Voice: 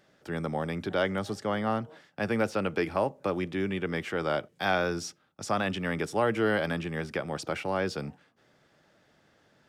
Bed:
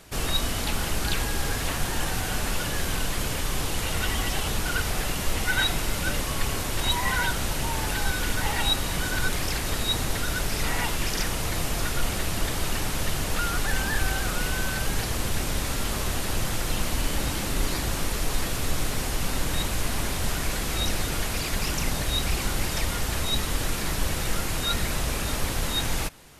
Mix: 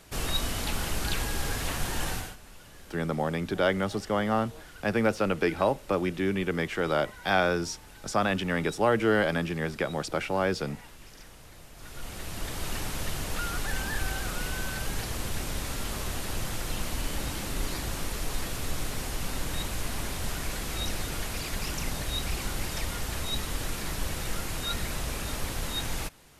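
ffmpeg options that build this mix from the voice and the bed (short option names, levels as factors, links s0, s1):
-filter_complex "[0:a]adelay=2650,volume=1.33[s0];[1:a]volume=4.73,afade=t=out:st=2.11:d=0.25:silence=0.112202,afade=t=in:st=11.74:d=1:silence=0.141254[s1];[s0][s1]amix=inputs=2:normalize=0"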